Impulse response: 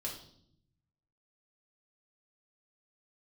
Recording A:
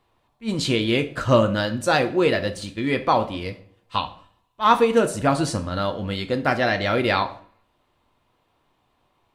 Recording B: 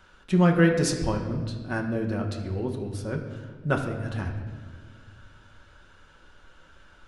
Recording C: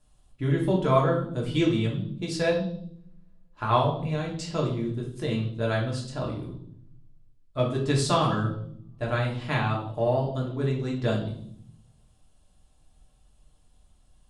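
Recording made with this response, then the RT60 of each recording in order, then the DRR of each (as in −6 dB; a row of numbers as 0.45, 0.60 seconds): C; 0.50, 1.7, 0.65 seconds; 8.0, 2.0, −3.0 decibels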